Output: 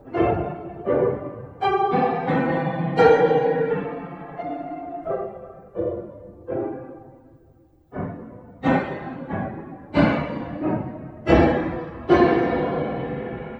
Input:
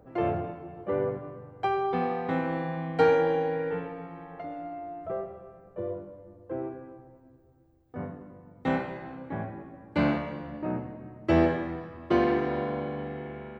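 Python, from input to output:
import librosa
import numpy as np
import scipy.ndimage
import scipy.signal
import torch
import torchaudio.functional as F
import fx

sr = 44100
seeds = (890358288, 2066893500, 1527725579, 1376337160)

y = fx.phase_scramble(x, sr, seeds[0], window_ms=50)
y = y * 10.0 ** (7.5 / 20.0)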